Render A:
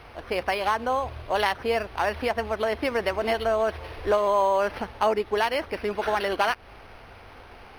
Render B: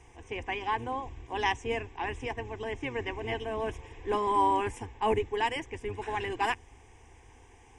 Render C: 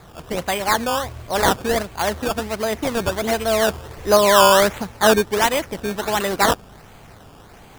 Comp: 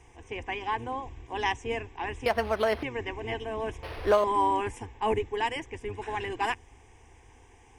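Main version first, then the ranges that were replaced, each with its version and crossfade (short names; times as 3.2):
B
2.26–2.83 from A
3.83–4.24 from A
not used: C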